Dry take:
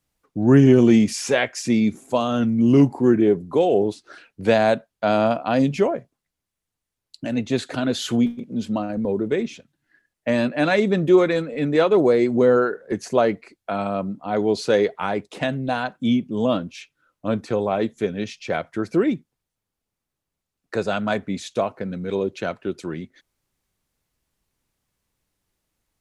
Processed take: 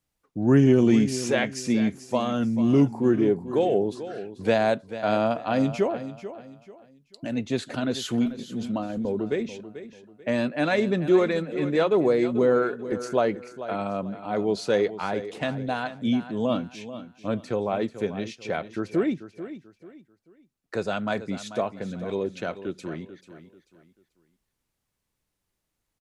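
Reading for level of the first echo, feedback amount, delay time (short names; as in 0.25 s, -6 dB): -13.0 dB, 31%, 0.439 s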